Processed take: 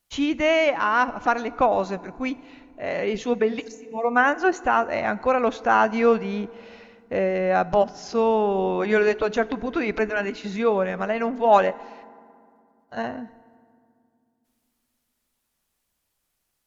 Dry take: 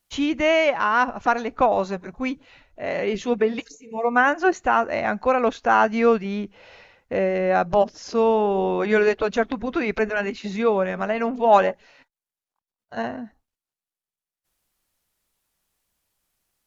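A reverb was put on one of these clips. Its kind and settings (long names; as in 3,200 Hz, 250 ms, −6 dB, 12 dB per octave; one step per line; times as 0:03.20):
feedback delay network reverb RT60 2.3 s, low-frequency decay 1.5×, high-frequency decay 0.55×, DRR 18 dB
level −1 dB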